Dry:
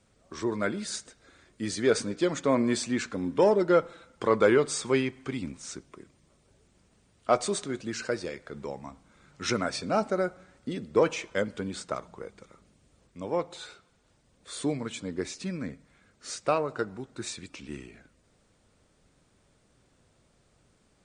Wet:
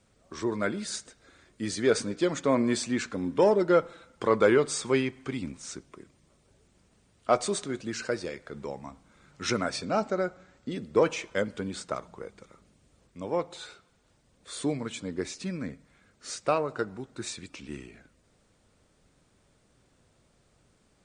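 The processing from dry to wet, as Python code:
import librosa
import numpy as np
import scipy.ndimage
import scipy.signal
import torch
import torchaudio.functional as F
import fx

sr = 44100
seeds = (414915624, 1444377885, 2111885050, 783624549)

y = fx.ellip_lowpass(x, sr, hz=7800.0, order=4, stop_db=40, at=(9.85, 10.73))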